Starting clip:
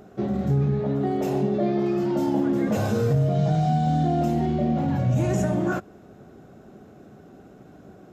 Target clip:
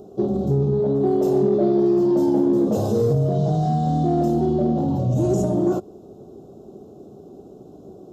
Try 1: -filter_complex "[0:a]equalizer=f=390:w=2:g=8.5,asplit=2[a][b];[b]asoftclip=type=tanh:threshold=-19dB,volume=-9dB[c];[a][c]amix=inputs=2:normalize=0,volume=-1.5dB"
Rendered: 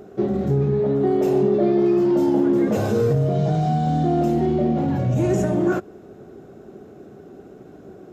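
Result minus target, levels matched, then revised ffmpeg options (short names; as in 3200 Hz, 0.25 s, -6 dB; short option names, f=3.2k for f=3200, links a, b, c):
2000 Hz band +14.0 dB
-filter_complex "[0:a]asuperstop=centerf=1900:order=4:qfactor=0.72,equalizer=f=390:w=2:g=8.5,asplit=2[a][b];[b]asoftclip=type=tanh:threshold=-19dB,volume=-9dB[c];[a][c]amix=inputs=2:normalize=0,volume=-1.5dB"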